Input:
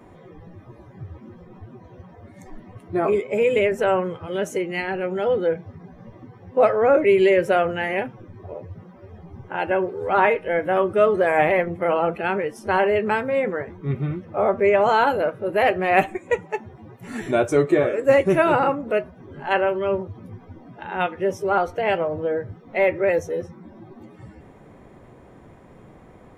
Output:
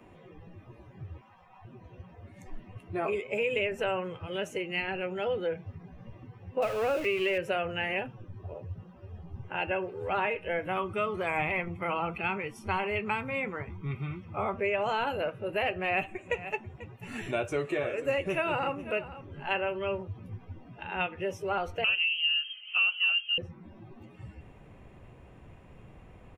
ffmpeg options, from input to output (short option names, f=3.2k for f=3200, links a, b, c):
-filter_complex "[0:a]asettb=1/sr,asplit=3[a][b][c];[a]atrim=end=1.214[d];[b]atrim=start=1.21:end=1.65,asetpts=PTS-STARTPTS,afade=t=in:d=0.004:c=qsin,afade=t=out:st=0.436:d=0.004:c=qsin,lowshelf=f=550:t=q:w=3:g=-13.5[e];[c]atrim=start=1.646[f];[d][e]acrossfade=d=0.004:c1=hsin:c2=qsin[g];[g][f]acrossfade=d=0.004:c1=qsin:c2=hsin,asettb=1/sr,asplit=3[h][i][j];[h]atrim=end=6.624[k];[i]atrim=start=6.62:end=7.38,asetpts=PTS-STARTPTS,afade=t=in:d=0.004:c=qsin,afade=t=out:st=0.756:d=0.004:c=qsin,aeval=exprs='val(0)+0.5*0.0473*sgn(val(0))':c=same[l];[j]atrim=start=7.376[m];[k][l]acrossfade=d=0.004:c1=hsin:c2=qsin[n];[n][m]acrossfade=d=0.004:c1=qsin:c2=hsin,asettb=1/sr,asplit=3[o][p][q];[o]atrim=end=7.984[r];[p]atrim=start=7.98:end=9.43,asetpts=PTS-STARTPTS,afade=t=in:d=0.004:c=qsin,afade=t=out:st=1.446:d=0.004:c=qsin,equalizer=f=2.2k:w=3.9:g=-9[s];[q]atrim=start=9.426[t];[r][s]acrossfade=d=0.004:c1=hsin:c2=qsin[u];[u][t]acrossfade=d=0.004:c1=qsin:c2=hsin,asettb=1/sr,asplit=3[v][w][x];[v]atrim=end=10.684[y];[w]atrim=start=10.68:end=14.56,asetpts=PTS-STARTPTS,afade=t=in:d=0.004:c=qsin,afade=t=out:st=3.876:d=0.004:c=qsin,aecho=1:1:0.9:0.53,atrim=end_sample=171108[z];[x]atrim=start=14.556[aa];[y][z]acrossfade=d=0.004:c1=hsin:c2=qsin[ab];[ab][aa]acrossfade=d=0.004:c1=qsin:c2=hsin,asplit=3[ac][ad][ae];[ac]afade=t=out:st=16.18:d=0.02[af];[ad]aecho=1:1:490:0.112,afade=t=in:st=16.18:d=0.02,afade=t=out:st=19.36:d=0.02[ag];[ae]afade=t=in:st=19.36:d=0.02[ah];[af][ag][ah]amix=inputs=3:normalize=0,asettb=1/sr,asplit=3[ai][aj][ak];[ai]atrim=end=21.844[al];[aj]atrim=start=21.84:end=23.38,asetpts=PTS-STARTPTS,afade=t=in:d=0.004:c=qsin,afade=t=out:st=1.536:d=0.004:c=qsin,lowpass=f=2.8k:t=q:w=0.5098,lowpass=f=2.8k:t=q:w=0.6013,lowpass=f=2.8k:t=q:w=0.9,lowpass=f=2.8k:t=q:w=2.563,afreqshift=-3300[am];[ak]atrim=start=23.376[an];[al][am]acrossfade=d=0.004:c1=hsin:c2=qsin[ao];[ao][an]acrossfade=d=0.004:c1=qsin:c2=hsin,equalizer=f=2.7k:t=o:w=0.33:g=13,acrossover=split=390|3700[ap][aq][ar];[ap]acompressor=threshold=-31dB:ratio=4[as];[aq]acompressor=threshold=-20dB:ratio=4[at];[ar]acompressor=threshold=-42dB:ratio=4[au];[as][at][au]amix=inputs=3:normalize=0,asubboost=boost=2.5:cutoff=140,volume=-7dB"